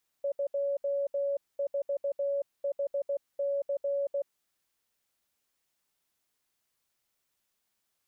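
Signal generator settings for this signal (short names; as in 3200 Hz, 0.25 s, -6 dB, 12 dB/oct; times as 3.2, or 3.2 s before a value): Morse "24HC" 16 wpm 562 Hz -27 dBFS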